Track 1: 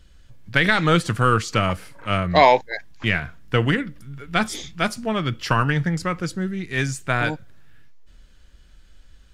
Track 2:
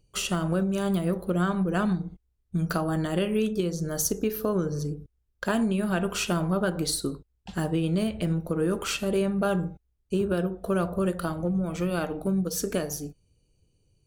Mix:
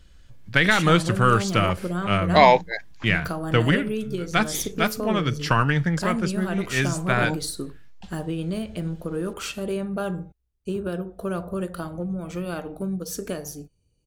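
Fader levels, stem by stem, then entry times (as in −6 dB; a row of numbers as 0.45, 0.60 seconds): −0.5, −2.5 decibels; 0.00, 0.55 seconds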